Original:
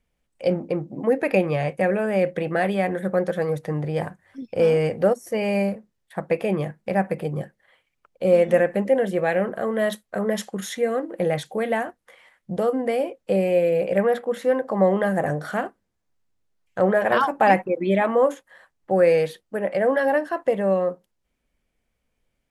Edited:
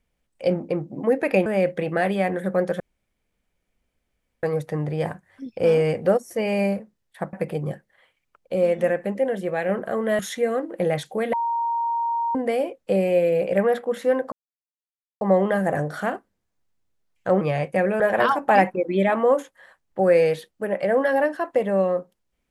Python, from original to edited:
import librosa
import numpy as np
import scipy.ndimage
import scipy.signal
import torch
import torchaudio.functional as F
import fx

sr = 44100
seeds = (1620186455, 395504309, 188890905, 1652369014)

y = fx.edit(x, sr, fx.move(start_s=1.46, length_s=0.59, to_s=16.92),
    fx.insert_room_tone(at_s=3.39, length_s=1.63),
    fx.cut(start_s=6.29, length_s=0.74),
    fx.clip_gain(start_s=8.25, length_s=1.14, db=-3.5),
    fx.cut(start_s=9.89, length_s=0.7),
    fx.bleep(start_s=11.73, length_s=1.02, hz=932.0, db=-21.0),
    fx.insert_silence(at_s=14.72, length_s=0.89), tone=tone)